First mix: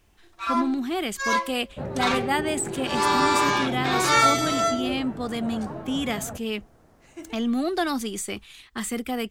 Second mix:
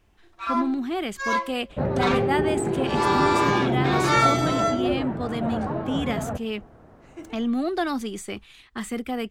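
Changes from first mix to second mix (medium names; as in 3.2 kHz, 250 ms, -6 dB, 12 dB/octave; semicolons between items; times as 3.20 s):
second sound +7.5 dB; master: add treble shelf 4.3 kHz -9.5 dB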